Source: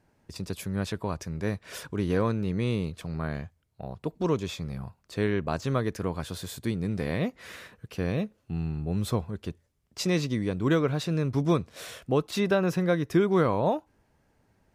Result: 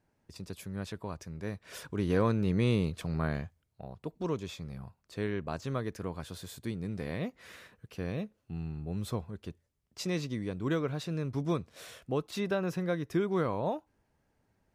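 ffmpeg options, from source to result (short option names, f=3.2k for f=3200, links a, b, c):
-af "volume=0.5dB,afade=t=in:st=1.53:d=1:silence=0.375837,afade=t=out:st=3.23:d=0.66:silence=0.421697"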